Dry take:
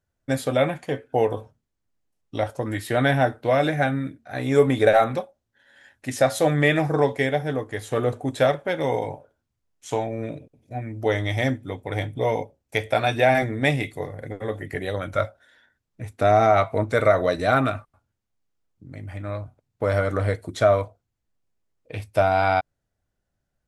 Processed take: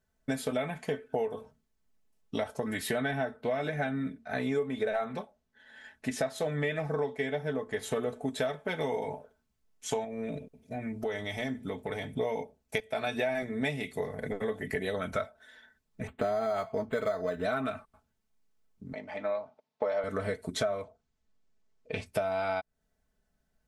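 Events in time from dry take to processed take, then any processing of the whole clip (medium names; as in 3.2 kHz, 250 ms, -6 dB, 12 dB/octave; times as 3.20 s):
3.00–7.83 s: treble shelf 6.6 kHz -8.5 dB
10.04–12.16 s: compression 3:1, threshold -31 dBFS
12.80–13.20 s: fade in, from -13.5 dB
16.07–17.45 s: decimation joined by straight lines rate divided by 8×
18.93–20.04 s: cabinet simulation 320–5500 Hz, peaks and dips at 380 Hz -4 dB, 580 Hz +7 dB, 900 Hz +7 dB, 1.5 kHz -3 dB
20.83–22.06 s: low-pass 7.7 kHz 24 dB/octave
whole clip: comb 4.6 ms, depth 73%; compression 6:1, threshold -29 dBFS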